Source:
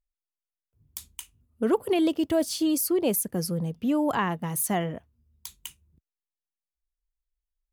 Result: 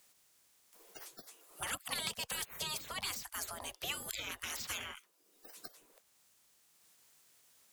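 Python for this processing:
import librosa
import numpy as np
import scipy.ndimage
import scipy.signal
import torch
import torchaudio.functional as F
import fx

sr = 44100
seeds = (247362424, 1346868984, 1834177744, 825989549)

y = fx.spec_gate(x, sr, threshold_db=-30, keep='weak')
y = fx.peak_eq(y, sr, hz=7900.0, db=4.5, octaves=1.3)
y = fx.band_squash(y, sr, depth_pct=70)
y = y * librosa.db_to_amplitude(7.0)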